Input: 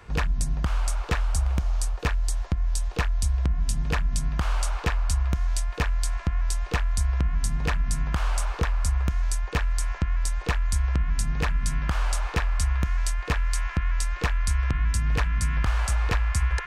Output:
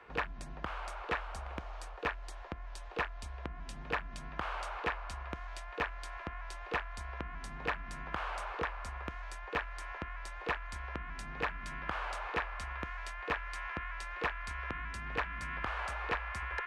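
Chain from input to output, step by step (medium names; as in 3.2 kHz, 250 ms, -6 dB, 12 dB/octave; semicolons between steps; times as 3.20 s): three-band isolator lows -18 dB, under 290 Hz, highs -20 dB, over 3.3 kHz; trim -3.5 dB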